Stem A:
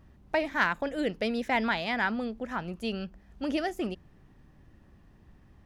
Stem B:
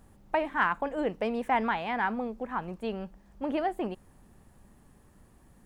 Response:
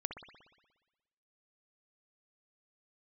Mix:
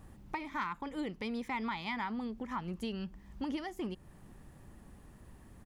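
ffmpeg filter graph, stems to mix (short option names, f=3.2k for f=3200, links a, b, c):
-filter_complex "[0:a]acompressor=threshold=-37dB:ratio=4,volume=-0.5dB[a];[1:a]acompressor=threshold=-44dB:ratio=2,adelay=1.2,volume=-0.5dB[b];[a][b]amix=inputs=2:normalize=0"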